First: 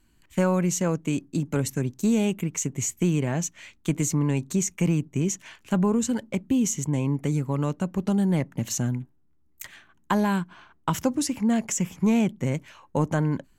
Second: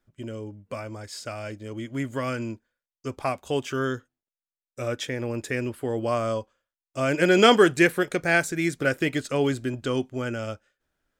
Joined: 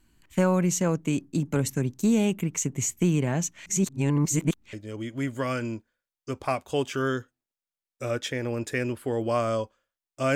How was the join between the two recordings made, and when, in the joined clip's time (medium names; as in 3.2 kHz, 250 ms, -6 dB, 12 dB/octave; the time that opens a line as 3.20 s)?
first
3.66–4.73 s: reverse
4.73 s: go over to second from 1.50 s